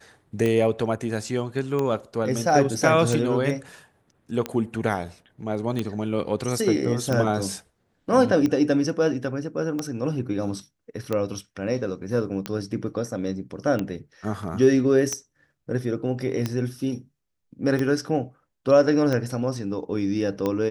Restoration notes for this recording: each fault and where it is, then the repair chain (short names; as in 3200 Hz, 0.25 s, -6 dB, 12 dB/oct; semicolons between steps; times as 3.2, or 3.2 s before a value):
tick 45 rpm -13 dBFS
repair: de-click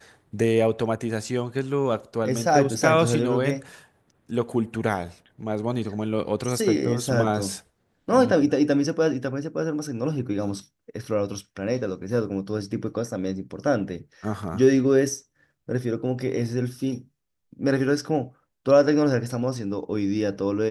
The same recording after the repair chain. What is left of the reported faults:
none